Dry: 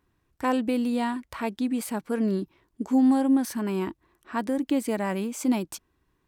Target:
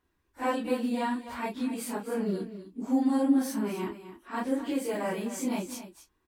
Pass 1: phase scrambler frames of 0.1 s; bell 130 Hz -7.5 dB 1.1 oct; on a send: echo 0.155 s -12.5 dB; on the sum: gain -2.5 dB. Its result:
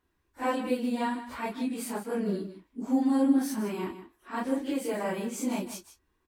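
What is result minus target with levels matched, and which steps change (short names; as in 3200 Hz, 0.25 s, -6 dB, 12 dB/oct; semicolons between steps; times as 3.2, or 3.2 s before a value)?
echo 0.102 s early
change: echo 0.257 s -12.5 dB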